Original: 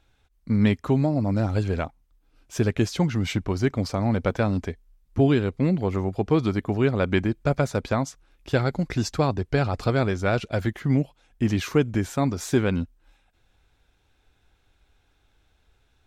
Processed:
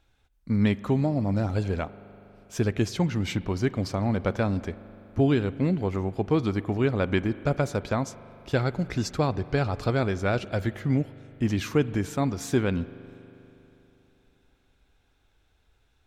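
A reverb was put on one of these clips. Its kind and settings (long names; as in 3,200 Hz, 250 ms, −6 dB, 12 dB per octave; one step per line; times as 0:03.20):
spring reverb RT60 3.4 s, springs 40 ms, chirp 35 ms, DRR 16 dB
level −2.5 dB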